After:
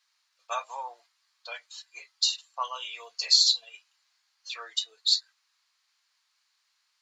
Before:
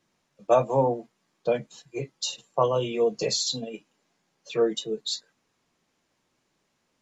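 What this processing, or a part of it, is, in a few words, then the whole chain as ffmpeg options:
headphones lying on a table: -af "highpass=f=1100:w=0.5412,highpass=f=1100:w=1.3066,equalizer=f=4400:t=o:w=0.44:g=10"

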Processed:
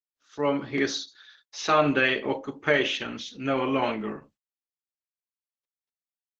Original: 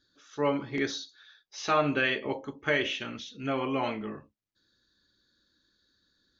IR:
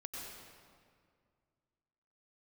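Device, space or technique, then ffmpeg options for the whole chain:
video call: -af "highpass=130,dynaudnorm=f=350:g=3:m=1.78,agate=range=0.01:threshold=0.00158:ratio=16:detection=peak" -ar 48000 -c:a libopus -b:a 12k

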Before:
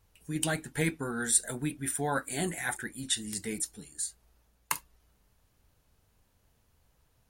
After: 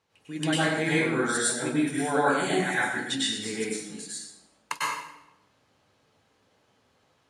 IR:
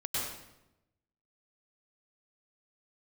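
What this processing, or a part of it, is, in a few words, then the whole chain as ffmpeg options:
supermarket ceiling speaker: -filter_complex "[0:a]highpass=240,lowpass=5300[s0];[1:a]atrim=start_sample=2205[s1];[s0][s1]afir=irnorm=-1:irlink=0,volume=1.5"

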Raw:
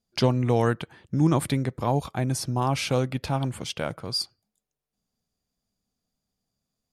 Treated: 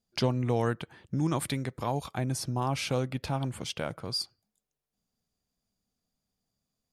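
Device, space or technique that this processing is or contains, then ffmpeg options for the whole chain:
parallel compression: -filter_complex "[0:a]asettb=1/sr,asplit=3[s0][s1][s2];[s0]atrim=end=1.204[s3];[s1]atrim=start=1.2:end=2.18,asetpts=PTS-STARTPTS,afade=t=in:d=0.004:c=qsin,afade=t=out:st=0.976:d=0.004:c=qsin,tiltshelf=f=970:g=-3[s4];[s2]atrim=start=2.176[s5];[s3][s4]acrossfade=d=0.004:c1=hsin:c2=qsin[s6];[s6][s5]acrossfade=d=0.004:c1=qsin:c2=hsin,asplit=2[s7][s8];[s8]acompressor=threshold=0.0251:ratio=6,volume=0.841[s9];[s7][s9]amix=inputs=2:normalize=0,volume=0.447"

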